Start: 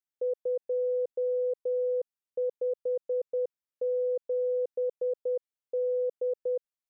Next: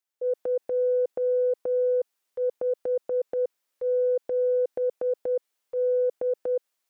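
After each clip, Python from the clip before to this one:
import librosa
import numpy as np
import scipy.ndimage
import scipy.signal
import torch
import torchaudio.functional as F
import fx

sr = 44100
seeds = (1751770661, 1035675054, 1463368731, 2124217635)

y = scipy.signal.sosfilt(scipy.signal.butter(2, 320.0, 'highpass', fs=sr, output='sos'), x)
y = fx.transient(y, sr, attack_db=-6, sustain_db=9)
y = y * librosa.db_to_amplitude(6.0)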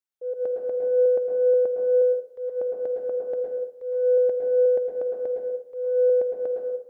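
y = fx.rev_plate(x, sr, seeds[0], rt60_s=0.9, hf_ratio=0.55, predelay_ms=100, drr_db=-1.0)
y = fx.upward_expand(y, sr, threshold_db=-33.0, expansion=1.5)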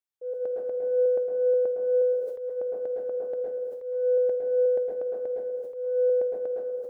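y = fx.sustainer(x, sr, db_per_s=49.0)
y = y * librosa.db_to_amplitude(-3.5)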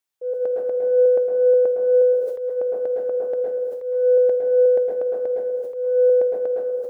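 y = fx.low_shelf(x, sr, hz=360.0, db=-5.0)
y = y * librosa.db_to_amplitude(9.0)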